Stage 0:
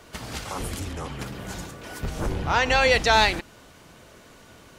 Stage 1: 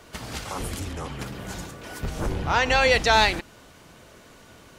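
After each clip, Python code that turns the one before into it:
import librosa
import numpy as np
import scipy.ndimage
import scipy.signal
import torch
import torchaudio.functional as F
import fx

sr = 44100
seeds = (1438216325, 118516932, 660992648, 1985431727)

y = x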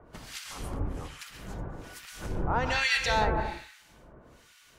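y = fx.octave_divider(x, sr, octaves=2, level_db=-1.0)
y = fx.rev_plate(y, sr, seeds[0], rt60_s=0.87, hf_ratio=0.75, predelay_ms=110, drr_db=4.0)
y = fx.harmonic_tremolo(y, sr, hz=1.2, depth_pct=100, crossover_hz=1400.0)
y = F.gain(torch.from_numpy(y), -3.5).numpy()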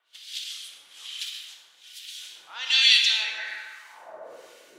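y = fx.filter_sweep_highpass(x, sr, from_hz=3400.0, to_hz=340.0, start_s=3.07, end_s=4.6, q=4.4)
y = fx.rotary(y, sr, hz=0.65)
y = fx.rev_plate(y, sr, seeds[1], rt60_s=1.6, hf_ratio=0.6, predelay_ms=0, drr_db=3.5)
y = F.gain(torch.from_numpy(y), 5.5).numpy()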